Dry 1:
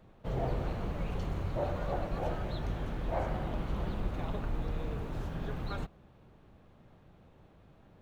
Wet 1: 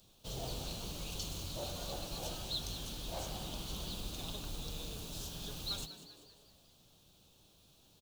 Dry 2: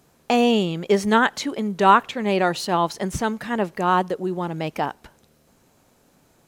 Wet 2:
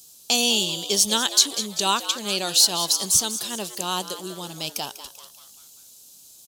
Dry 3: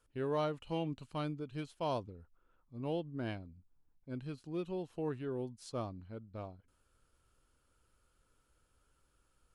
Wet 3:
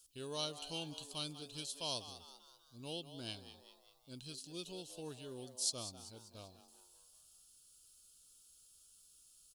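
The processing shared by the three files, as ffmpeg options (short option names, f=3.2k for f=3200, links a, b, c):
-filter_complex "[0:a]asplit=6[a][b][c][d][e][f];[b]adelay=195,afreqshift=130,volume=-13dB[g];[c]adelay=390,afreqshift=260,volume=-19.4dB[h];[d]adelay=585,afreqshift=390,volume=-25.8dB[i];[e]adelay=780,afreqshift=520,volume=-32.1dB[j];[f]adelay=975,afreqshift=650,volume=-38.5dB[k];[a][g][h][i][j][k]amix=inputs=6:normalize=0,aexciter=amount=12.7:drive=8:freq=3.1k,volume=-10dB"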